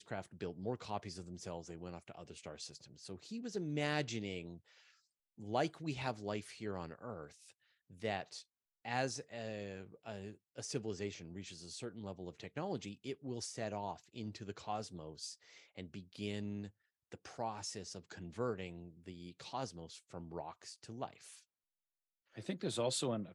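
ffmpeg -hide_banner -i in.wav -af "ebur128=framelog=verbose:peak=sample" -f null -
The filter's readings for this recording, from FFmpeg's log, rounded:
Integrated loudness:
  I:         -43.7 LUFS
  Threshold: -54.1 LUFS
Loudness range:
  LRA:         4.9 LU
  Threshold: -64.5 LUFS
  LRA low:   -46.7 LUFS
  LRA high:  -41.8 LUFS
Sample peak:
  Peak:      -20.4 dBFS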